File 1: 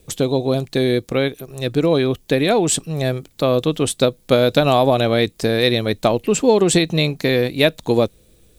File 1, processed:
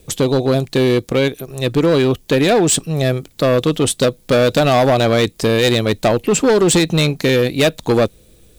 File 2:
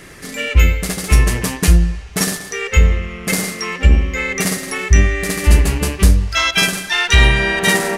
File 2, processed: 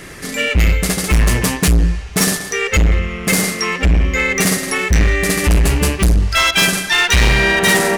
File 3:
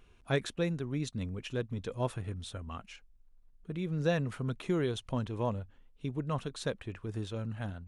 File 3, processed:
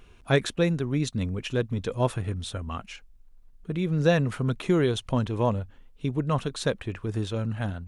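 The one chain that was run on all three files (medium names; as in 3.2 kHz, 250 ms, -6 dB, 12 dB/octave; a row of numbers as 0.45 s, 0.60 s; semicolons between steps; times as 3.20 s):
hard clipper -13.5 dBFS; peak normalisation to -9 dBFS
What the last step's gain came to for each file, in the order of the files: +4.5 dB, +4.5 dB, +8.0 dB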